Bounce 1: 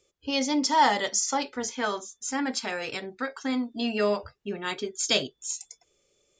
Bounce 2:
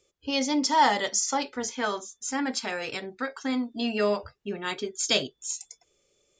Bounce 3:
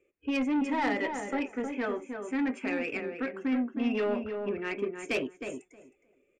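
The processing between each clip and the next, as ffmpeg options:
-af anull
-filter_complex "[0:a]firequalizer=gain_entry='entry(130,0);entry(280,12);entry(900,-2);entry(2500,11);entry(4000,-30);entry(8700,-6)':delay=0.05:min_phase=1,asoftclip=type=tanh:threshold=0.141,asplit=2[s0][s1];[s1]adelay=314,lowpass=f=1500:p=1,volume=0.531,asplit=2[s2][s3];[s3]adelay=314,lowpass=f=1500:p=1,volume=0.16,asplit=2[s4][s5];[s5]adelay=314,lowpass=f=1500:p=1,volume=0.16[s6];[s2][s4][s6]amix=inputs=3:normalize=0[s7];[s0][s7]amix=inputs=2:normalize=0,volume=0.447"

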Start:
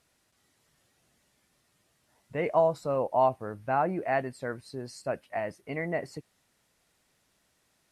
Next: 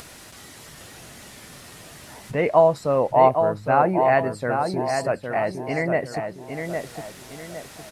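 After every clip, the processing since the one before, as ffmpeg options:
-filter_complex "[0:a]acompressor=mode=upward:threshold=0.0178:ratio=2.5,asplit=2[s0][s1];[s1]adelay=810,lowpass=f=3100:p=1,volume=0.531,asplit=2[s2][s3];[s3]adelay=810,lowpass=f=3100:p=1,volume=0.39,asplit=2[s4][s5];[s5]adelay=810,lowpass=f=3100:p=1,volume=0.39,asplit=2[s6][s7];[s7]adelay=810,lowpass=f=3100:p=1,volume=0.39,asplit=2[s8][s9];[s9]adelay=810,lowpass=f=3100:p=1,volume=0.39[s10];[s2][s4][s6][s8][s10]amix=inputs=5:normalize=0[s11];[s0][s11]amix=inputs=2:normalize=0,volume=2.51"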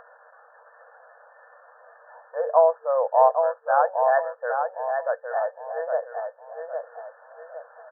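-af "afftfilt=real='re*between(b*sr/4096,460,1800)':imag='im*between(b*sr/4096,460,1800)':win_size=4096:overlap=0.75,volume=0.841"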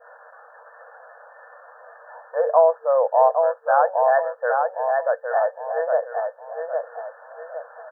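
-filter_complex "[0:a]adynamicequalizer=threshold=0.0251:dfrequency=1200:dqfactor=0.86:tfrequency=1200:tqfactor=0.86:attack=5:release=100:ratio=0.375:range=2.5:mode=cutabove:tftype=bell,asplit=2[s0][s1];[s1]alimiter=limit=0.133:level=0:latency=1:release=48,volume=0.944[s2];[s0][s2]amix=inputs=2:normalize=0"

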